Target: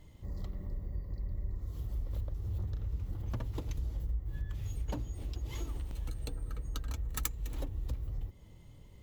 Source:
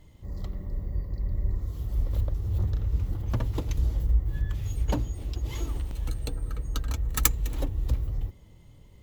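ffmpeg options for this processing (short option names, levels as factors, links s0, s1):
-af "acompressor=threshold=0.02:ratio=2.5,volume=0.794"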